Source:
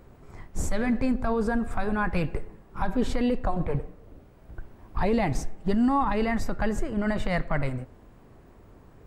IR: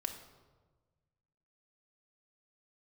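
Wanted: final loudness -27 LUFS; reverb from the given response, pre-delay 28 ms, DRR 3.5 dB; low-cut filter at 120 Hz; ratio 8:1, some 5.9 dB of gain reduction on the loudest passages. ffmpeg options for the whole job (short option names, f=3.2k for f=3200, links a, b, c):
-filter_complex "[0:a]highpass=120,acompressor=threshold=-26dB:ratio=8,asplit=2[a][b];[1:a]atrim=start_sample=2205,adelay=28[c];[b][c]afir=irnorm=-1:irlink=0,volume=-3.5dB[d];[a][d]amix=inputs=2:normalize=0,volume=3.5dB"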